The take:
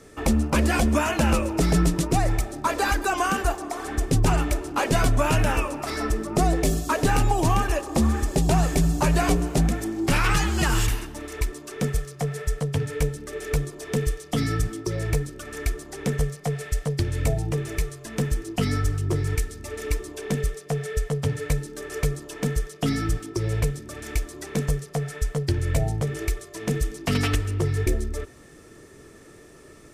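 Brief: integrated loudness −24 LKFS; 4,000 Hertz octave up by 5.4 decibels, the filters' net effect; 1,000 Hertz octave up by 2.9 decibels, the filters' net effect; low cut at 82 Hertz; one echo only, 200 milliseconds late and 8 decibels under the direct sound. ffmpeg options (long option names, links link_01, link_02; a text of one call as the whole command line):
ffmpeg -i in.wav -af "highpass=82,equalizer=frequency=1000:width_type=o:gain=3.5,equalizer=frequency=4000:width_type=o:gain=7,aecho=1:1:200:0.398,volume=0.5dB" out.wav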